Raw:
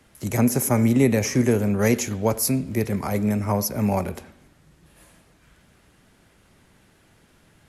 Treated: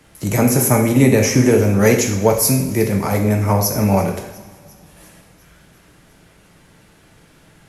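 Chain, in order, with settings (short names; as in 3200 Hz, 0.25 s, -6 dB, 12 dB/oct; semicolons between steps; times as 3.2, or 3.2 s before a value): on a send: thin delay 0.351 s, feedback 63%, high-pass 3800 Hz, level -20.5 dB; on the sum: two-slope reverb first 0.66 s, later 2.7 s, from -19 dB, DRR 2 dB; gain +5.5 dB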